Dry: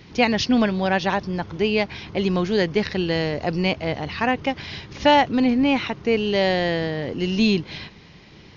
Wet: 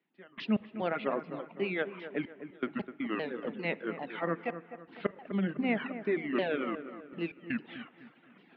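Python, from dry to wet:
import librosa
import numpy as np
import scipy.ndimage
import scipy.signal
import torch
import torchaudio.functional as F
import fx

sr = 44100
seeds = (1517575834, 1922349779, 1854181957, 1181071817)

y = fx.pitch_ramps(x, sr, semitones=-9.0, every_ms=399)
y = scipy.signal.sosfilt(scipy.signal.butter(6, 190.0, 'highpass', fs=sr, output='sos'), y)
y = fx.step_gate(y, sr, bpm=80, pattern='..x.xxxxxxxx', floor_db=-24.0, edge_ms=4.5)
y = scipy.signal.sosfilt(scipy.signal.butter(4, 3000.0, 'lowpass', fs=sr, output='sos'), y)
y = fx.rev_spring(y, sr, rt60_s=1.6, pass_ms=(41, 52), chirp_ms=35, drr_db=9.5)
y = fx.dereverb_blind(y, sr, rt60_s=0.92)
y = fx.echo_wet_lowpass(y, sr, ms=253, feedback_pct=40, hz=1800.0, wet_db=-11)
y = y * 10.0 ** (-8.0 / 20.0)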